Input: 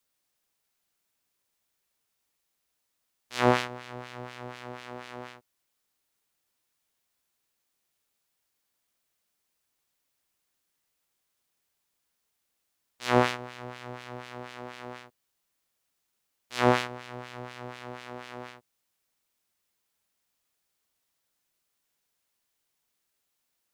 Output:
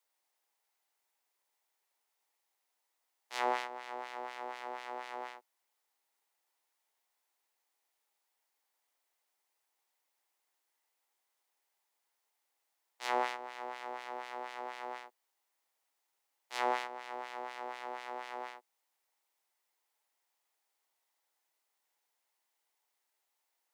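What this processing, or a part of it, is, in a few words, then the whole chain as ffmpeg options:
laptop speaker: -af "highpass=frequency=330:width=0.5412,highpass=frequency=330:width=1.3066,equalizer=frequency=850:width_type=o:width=0.59:gain=10,equalizer=frequency=2000:width_type=o:width=0.26:gain=5,alimiter=limit=-15.5dB:level=0:latency=1:release=377,volume=-4.5dB"

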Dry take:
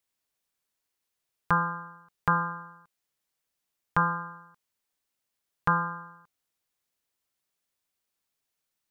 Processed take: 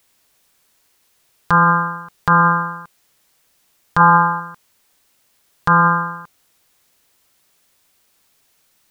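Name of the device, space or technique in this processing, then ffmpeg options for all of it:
loud club master: -filter_complex "[0:a]acompressor=threshold=-30dB:ratio=1.5,asoftclip=type=hard:threshold=-14.5dB,alimiter=level_in=25dB:limit=-1dB:release=50:level=0:latency=1,asettb=1/sr,asplit=3[link_01][link_02][link_03];[link_01]atrim=end=4.004[link_04];[link_02]atrim=start=4:end=4.4,asetpts=PTS-STARTPTS,afade=type=in:duration=0.004:curve=qsin,afade=type=out:start_time=0.396:duration=0.004:curve=qsin,equalizer=frequency=880:width=5:gain=8.5[link_05];[link_03]atrim=start=4.396[link_06];[link_04][link_05]acrossfade=duration=0.004:curve1=hsin:curve2=qsin[link_07];[link_07][link_06]acrossfade=duration=0.004:curve1=qsin:curve2=hsin,volume=-3dB"

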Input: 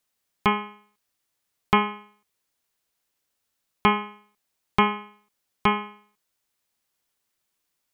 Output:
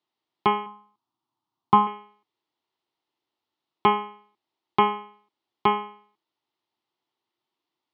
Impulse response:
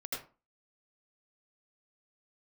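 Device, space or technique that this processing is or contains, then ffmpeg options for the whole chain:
guitar cabinet: -filter_complex "[0:a]highpass=98,equalizer=frequency=190:width_type=q:width=4:gain=-7,equalizer=frequency=340:width_type=q:width=4:gain=9,equalizer=frequency=530:width_type=q:width=4:gain=-6,equalizer=frequency=890:width_type=q:width=4:gain=6,equalizer=frequency=1600:width_type=q:width=4:gain=-10,equalizer=frequency=2400:width_type=q:width=4:gain=-6,lowpass=frequency=4000:width=0.5412,lowpass=frequency=4000:width=1.3066,asettb=1/sr,asplit=3[link_01][link_02][link_03];[link_01]atrim=end=0.664[link_04];[link_02]atrim=start=0.66:end=1.87,asetpts=PTS-STARTPTS,afade=type=in:duration=0.004:curve=qsin,afade=type=out:start_time=1.206:duration=0.004:curve=qsin,equalizer=frequency=125:width_type=o:width=1:gain=5,equalizer=frequency=250:width_type=o:width=1:gain=5,equalizer=frequency=500:width_type=o:width=1:gain=-11,equalizer=frequency=1000:width_type=o:width=1:gain=9,equalizer=frequency=2000:width_type=o:width=1:gain=-11,equalizer=frequency=4000:width_type=o:width=1:gain=-3[link_05];[link_03]atrim=start=1.866[link_06];[link_04][link_05]acrossfade=duration=0.004:curve1=hsin:curve2=qsin[link_07];[link_07][link_06]acrossfade=duration=0.004:curve1=qsin:curve2=hsin,highpass=99"

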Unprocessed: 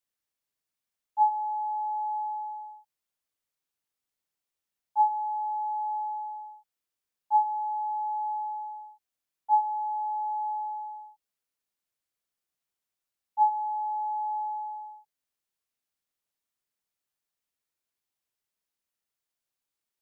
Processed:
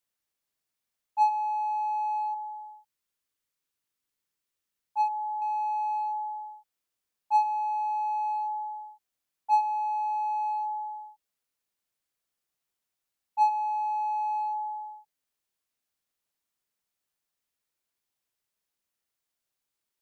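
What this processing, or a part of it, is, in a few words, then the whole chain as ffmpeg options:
parallel distortion: -filter_complex "[0:a]asettb=1/sr,asplit=3[link_01][link_02][link_03];[link_01]atrim=end=2.344[link_04];[link_02]atrim=start=2.34:end=5.42,asetpts=PTS-STARTPTS,afade=type=in:duration=0.004:curve=qsin,afade=type=out:start_time=3.076:duration=0.004:curve=qsin,equalizer=frequency=720:width_type=o:width=0.6:gain=-6[link_05];[link_03]atrim=start=5.416[link_06];[link_04][link_05]acrossfade=duration=0.004:curve1=hsin:curve2=qsin[link_07];[link_07][link_06]acrossfade=duration=0.004:curve1=qsin:curve2=hsin,asplit=2[link_08][link_09];[link_09]asoftclip=type=hard:threshold=-30.5dB,volume=-5.5dB[link_10];[link_08][link_10]amix=inputs=2:normalize=0,volume=-1.5dB"

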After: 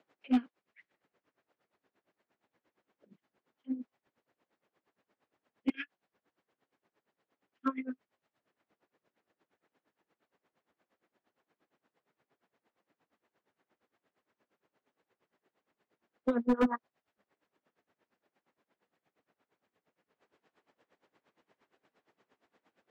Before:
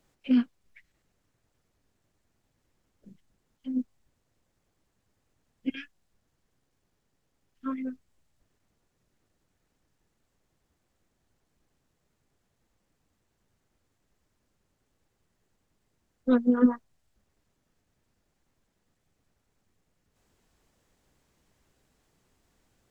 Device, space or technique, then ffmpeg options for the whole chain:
helicopter radio: -af "highpass=330,lowpass=2600,aeval=exprs='val(0)*pow(10,-21*(0.5-0.5*cos(2*PI*8.6*n/s))/20)':channel_layout=same,asoftclip=type=hard:threshold=-29dB,volume=7.5dB"

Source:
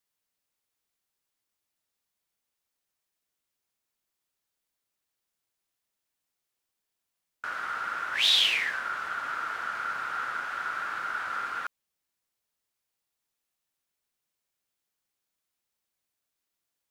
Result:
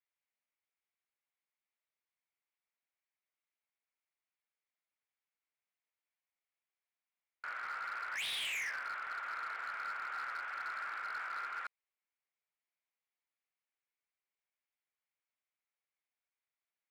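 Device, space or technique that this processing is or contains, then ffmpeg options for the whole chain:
megaphone: -af "highpass=530,lowpass=2700,equalizer=frequency=2200:width_type=o:width=0.41:gain=8,asoftclip=type=hard:threshold=-28dB,volume=-8dB"

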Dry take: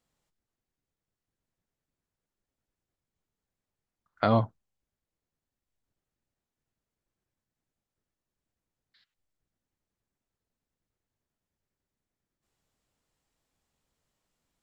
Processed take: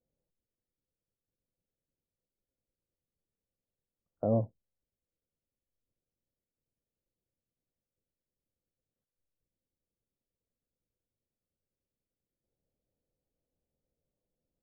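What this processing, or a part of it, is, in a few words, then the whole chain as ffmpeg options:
under water: -af "lowpass=frequency=620:width=0.5412,lowpass=frequency=620:width=1.3066,equalizer=frequency=520:width_type=o:width=0.3:gain=7,volume=-4.5dB"

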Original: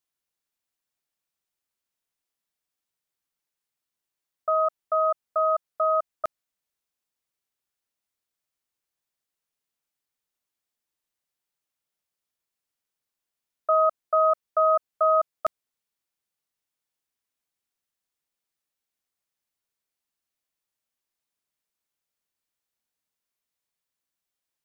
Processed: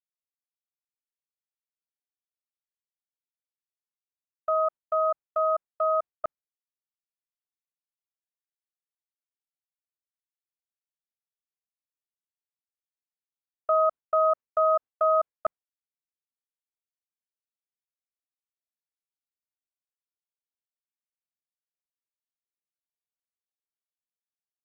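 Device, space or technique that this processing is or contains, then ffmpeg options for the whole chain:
hearing-loss simulation: -af "lowpass=1600,agate=range=-33dB:threshold=-29dB:ratio=3:detection=peak,volume=-1dB"

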